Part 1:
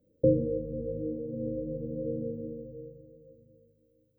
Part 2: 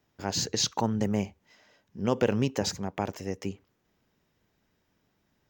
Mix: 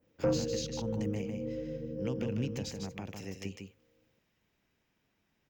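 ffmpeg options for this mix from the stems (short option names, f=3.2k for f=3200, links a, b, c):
-filter_complex "[0:a]asoftclip=type=tanh:threshold=-17.5dB,volume=-3.5dB[a];[1:a]equalizer=f=2.5k:t=o:w=0.72:g=6.5,acrossover=split=270[b][c];[c]acompressor=threshold=-38dB:ratio=10[d];[b][d]amix=inputs=2:normalize=0,adynamicequalizer=threshold=0.00178:dfrequency=2200:dqfactor=0.7:tfrequency=2200:tqfactor=0.7:attack=5:release=100:ratio=0.375:range=3:mode=boostabove:tftype=highshelf,volume=-6dB,asplit=2[e][f];[f]volume=-5.5dB,aecho=0:1:152:1[g];[a][e][g]amix=inputs=3:normalize=0"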